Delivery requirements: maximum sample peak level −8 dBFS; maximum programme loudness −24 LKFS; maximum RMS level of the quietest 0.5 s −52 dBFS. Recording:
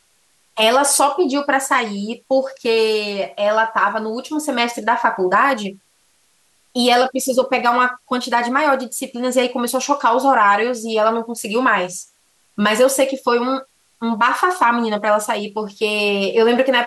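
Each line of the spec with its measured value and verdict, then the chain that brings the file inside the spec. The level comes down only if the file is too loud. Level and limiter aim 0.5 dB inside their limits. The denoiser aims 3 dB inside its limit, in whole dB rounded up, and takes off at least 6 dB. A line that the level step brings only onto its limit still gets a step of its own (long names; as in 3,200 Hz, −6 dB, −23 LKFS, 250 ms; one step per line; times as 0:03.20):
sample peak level −5.0 dBFS: out of spec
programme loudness −17.5 LKFS: out of spec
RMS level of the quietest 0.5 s −60 dBFS: in spec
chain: level −7 dB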